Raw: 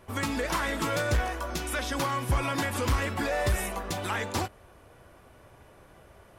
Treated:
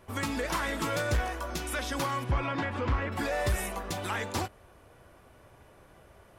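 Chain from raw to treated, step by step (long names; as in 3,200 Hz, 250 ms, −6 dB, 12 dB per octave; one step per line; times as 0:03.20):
0:02.23–0:03.11: low-pass filter 3,600 Hz → 2,100 Hz 12 dB per octave
level −2 dB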